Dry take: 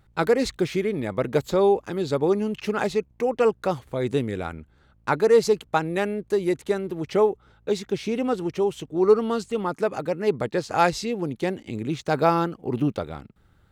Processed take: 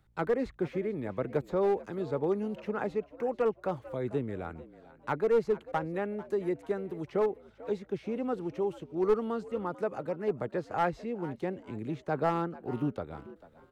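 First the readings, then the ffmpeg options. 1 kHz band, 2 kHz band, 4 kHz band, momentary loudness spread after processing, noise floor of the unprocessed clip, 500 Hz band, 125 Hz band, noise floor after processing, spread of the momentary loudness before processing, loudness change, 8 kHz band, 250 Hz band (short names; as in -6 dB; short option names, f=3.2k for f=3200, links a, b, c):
-8.5 dB, -10.5 dB, under -15 dB, 9 LU, -60 dBFS, -8.5 dB, -8.0 dB, -60 dBFS, 9 LU, -8.5 dB, under -20 dB, -8.0 dB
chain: -filter_complex "[0:a]acrossover=split=230|430|2100[a][b][c][d];[d]acompressor=threshold=-55dB:ratio=6[e];[a][b][c][e]amix=inputs=4:normalize=0,aeval=exprs='clip(val(0),-1,0.2)':c=same,asplit=4[f][g][h][i];[g]adelay=444,afreqshift=76,volume=-18dB[j];[h]adelay=888,afreqshift=152,volume=-27.4dB[k];[i]adelay=1332,afreqshift=228,volume=-36.7dB[l];[f][j][k][l]amix=inputs=4:normalize=0,volume=-8dB"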